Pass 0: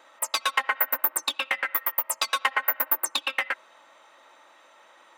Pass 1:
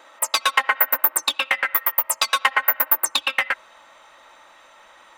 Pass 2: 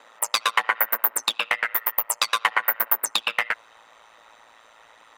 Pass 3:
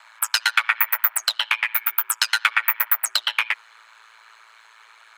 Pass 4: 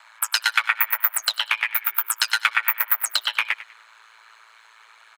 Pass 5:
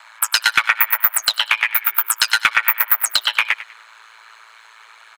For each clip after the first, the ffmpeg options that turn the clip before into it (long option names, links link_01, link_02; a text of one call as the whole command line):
ffmpeg -i in.wav -af "asubboost=boost=7.5:cutoff=120,volume=6dB" out.wav
ffmpeg -i in.wav -af "aeval=exprs='val(0)*sin(2*PI*56*n/s)':channel_layout=same" out.wav
ffmpeg -i in.wav -af "afreqshift=380,volume=2dB" out.wav
ffmpeg -i in.wav -af "aecho=1:1:99|198|297:0.158|0.0475|0.0143,volume=-1dB" out.wav
ffmpeg -i in.wav -af "asoftclip=type=tanh:threshold=-6.5dB,volume=6dB" out.wav